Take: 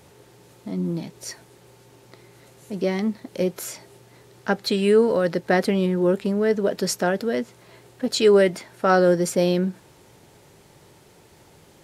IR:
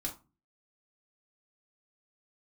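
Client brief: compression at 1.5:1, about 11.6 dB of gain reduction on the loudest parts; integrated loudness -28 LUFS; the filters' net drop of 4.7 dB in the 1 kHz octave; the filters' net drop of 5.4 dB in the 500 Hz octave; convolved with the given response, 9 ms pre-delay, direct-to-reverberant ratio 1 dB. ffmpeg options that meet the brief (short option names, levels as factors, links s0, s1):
-filter_complex "[0:a]equalizer=f=500:t=o:g=-6,equalizer=f=1000:t=o:g=-4.5,acompressor=threshold=0.00316:ratio=1.5,asplit=2[s0][s1];[1:a]atrim=start_sample=2205,adelay=9[s2];[s1][s2]afir=irnorm=-1:irlink=0,volume=0.841[s3];[s0][s3]amix=inputs=2:normalize=0,volume=1.88"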